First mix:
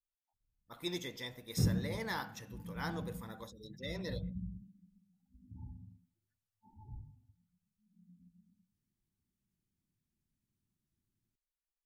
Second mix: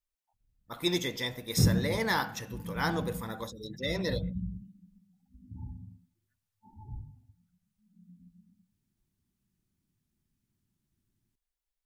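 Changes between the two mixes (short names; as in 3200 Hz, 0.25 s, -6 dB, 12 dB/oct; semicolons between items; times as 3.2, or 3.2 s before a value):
speech +10.0 dB; background +6.5 dB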